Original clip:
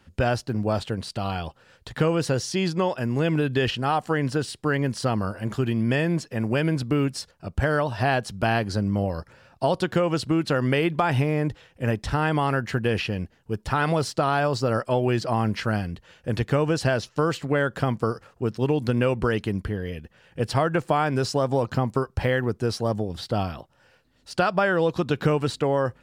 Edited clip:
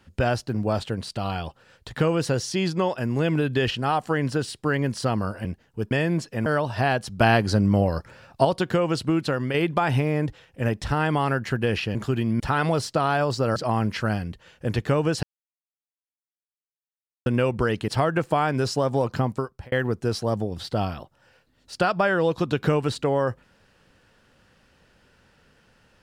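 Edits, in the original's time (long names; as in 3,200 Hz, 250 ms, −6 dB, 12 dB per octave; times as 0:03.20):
0:05.45–0:05.90: swap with 0:13.17–0:13.63
0:06.45–0:07.68: remove
0:08.42–0:09.67: clip gain +4.5 dB
0:10.42–0:10.76: fade out, to −6.5 dB
0:14.79–0:15.19: remove
0:16.86–0:18.89: silence
0:19.51–0:20.46: remove
0:21.83–0:22.30: fade out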